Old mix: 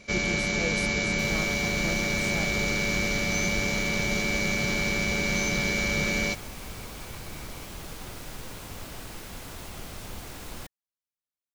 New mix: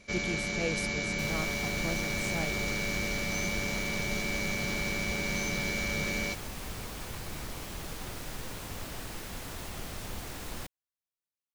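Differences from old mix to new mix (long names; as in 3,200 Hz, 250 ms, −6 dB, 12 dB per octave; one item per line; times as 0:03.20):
first sound −6.0 dB
master: remove notch filter 1,800 Hz, Q 26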